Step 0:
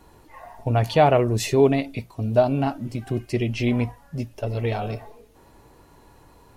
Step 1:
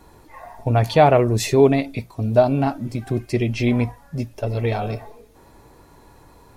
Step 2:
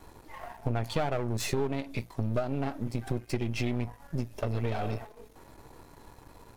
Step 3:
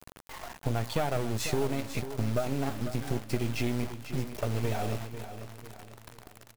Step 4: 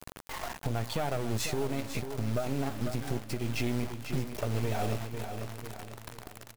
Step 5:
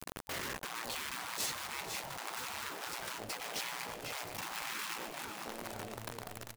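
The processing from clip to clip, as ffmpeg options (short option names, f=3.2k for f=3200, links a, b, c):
-af "bandreject=f=2.9k:w=11,volume=3dB"
-af "aeval=exprs='if(lt(val(0),0),0.251*val(0),val(0))':c=same,acompressor=threshold=-26dB:ratio=6"
-filter_complex "[0:a]acrusher=bits=6:mix=0:aa=0.000001,asplit=2[a][b];[b]aecho=0:1:495|990|1485|1980:0.282|0.116|0.0474|0.0194[c];[a][c]amix=inputs=2:normalize=0"
-af "alimiter=level_in=0.5dB:limit=-24dB:level=0:latency=1:release=429,volume=-0.5dB,volume=4.5dB"
-af "acrusher=bits=3:mode=log:mix=0:aa=0.000001,adynamicequalizer=threshold=0.00501:dfrequency=550:dqfactor=1:tfrequency=550:tqfactor=1:attack=5:release=100:ratio=0.375:range=3.5:mode=boostabove:tftype=bell,afftfilt=real='re*lt(hypot(re,im),0.0398)':imag='im*lt(hypot(re,im),0.0398)':win_size=1024:overlap=0.75,volume=1dB"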